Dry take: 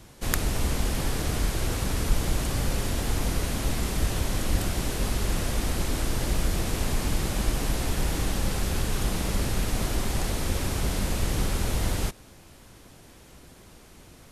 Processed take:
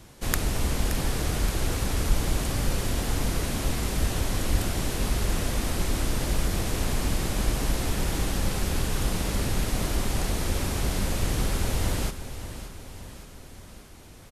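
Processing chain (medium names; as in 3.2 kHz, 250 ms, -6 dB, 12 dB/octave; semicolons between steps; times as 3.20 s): feedback delay 573 ms, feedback 55%, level -12 dB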